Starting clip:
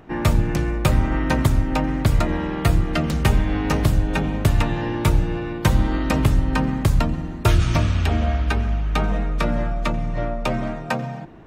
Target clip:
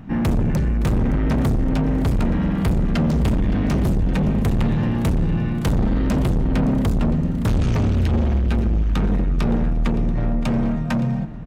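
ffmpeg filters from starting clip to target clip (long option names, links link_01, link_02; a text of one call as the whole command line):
ffmpeg -i in.wav -filter_complex "[0:a]lowshelf=frequency=290:width_type=q:width=3:gain=8.5,asoftclip=type=tanh:threshold=-16dB,asplit=2[link_01][link_02];[link_02]aecho=0:1:567|1134|1701|2268|2835|3402:0.158|0.0935|0.0552|0.0326|0.0192|0.0113[link_03];[link_01][link_03]amix=inputs=2:normalize=0" out.wav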